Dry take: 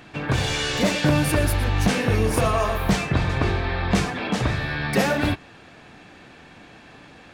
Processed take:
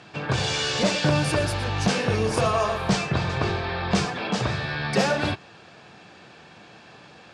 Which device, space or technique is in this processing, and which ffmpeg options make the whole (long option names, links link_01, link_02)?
car door speaker: -af "highpass=110,equalizer=frequency=270:width_type=q:width=4:gain=-9,equalizer=frequency=2000:width_type=q:width=4:gain=-5,equalizer=frequency=4900:width_type=q:width=4:gain=4,lowpass=frequency=8600:width=0.5412,lowpass=frequency=8600:width=1.3066"